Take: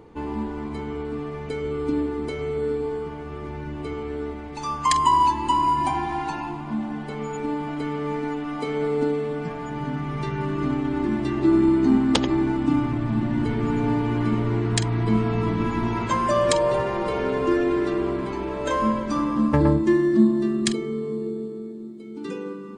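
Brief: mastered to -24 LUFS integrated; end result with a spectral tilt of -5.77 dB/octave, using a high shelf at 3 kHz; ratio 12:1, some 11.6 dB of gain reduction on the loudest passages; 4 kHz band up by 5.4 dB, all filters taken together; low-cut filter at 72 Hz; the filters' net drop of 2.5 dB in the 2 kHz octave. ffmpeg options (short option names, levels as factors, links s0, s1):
-af "highpass=72,equalizer=f=2000:t=o:g=-6.5,highshelf=f=3000:g=6.5,equalizer=f=4000:t=o:g=4,acompressor=threshold=0.0562:ratio=12,volume=2"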